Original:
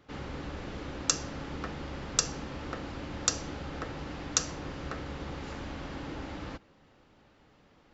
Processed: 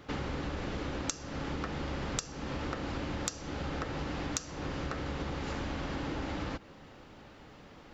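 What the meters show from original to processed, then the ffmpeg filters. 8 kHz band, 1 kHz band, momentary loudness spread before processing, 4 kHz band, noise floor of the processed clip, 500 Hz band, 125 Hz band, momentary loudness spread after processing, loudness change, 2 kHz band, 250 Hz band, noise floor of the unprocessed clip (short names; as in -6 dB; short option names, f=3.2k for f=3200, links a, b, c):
n/a, +1.0 dB, 10 LU, -5.0 dB, -53 dBFS, +2.0 dB, +2.5 dB, 17 LU, -2.0 dB, +1.0 dB, +2.5 dB, -62 dBFS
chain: -af "acompressor=threshold=-41dB:ratio=16,volume=9dB"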